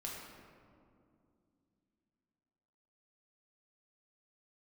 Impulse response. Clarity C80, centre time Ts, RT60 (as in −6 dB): 2.0 dB, 96 ms, 2.5 s